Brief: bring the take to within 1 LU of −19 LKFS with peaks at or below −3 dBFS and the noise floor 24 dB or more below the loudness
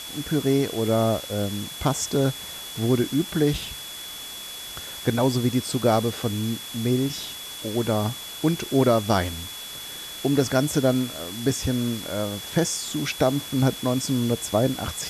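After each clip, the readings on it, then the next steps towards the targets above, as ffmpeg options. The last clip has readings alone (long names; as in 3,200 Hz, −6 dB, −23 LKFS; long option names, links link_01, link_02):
interfering tone 3,400 Hz; level of the tone −37 dBFS; background noise floor −37 dBFS; target noise floor −49 dBFS; integrated loudness −25.0 LKFS; sample peak −7.0 dBFS; target loudness −19.0 LKFS
→ -af "bandreject=frequency=3400:width=30"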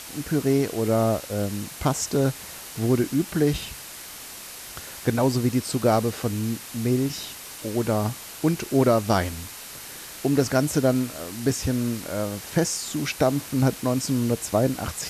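interfering tone none found; background noise floor −40 dBFS; target noise floor −49 dBFS
→ -af "afftdn=noise_reduction=9:noise_floor=-40"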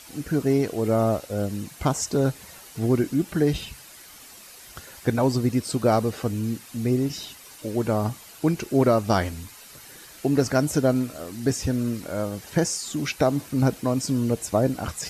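background noise floor −46 dBFS; target noise floor −49 dBFS
→ -af "afftdn=noise_reduction=6:noise_floor=-46"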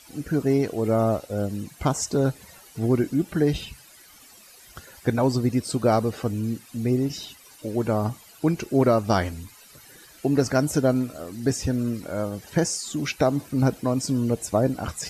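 background noise floor −50 dBFS; integrated loudness −24.5 LKFS; sample peak −7.5 dBFS; target loudness −19.0 LKFS
→ -af "volume=5.5dB,alimiter=limit=-3dB:level=0:latency=1"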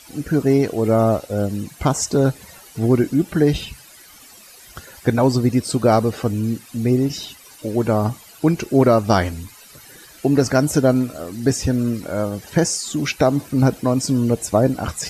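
integrated loudness −19.5 LKFS; sample peak −3.0 dBFS; background noise floor −45 dBFS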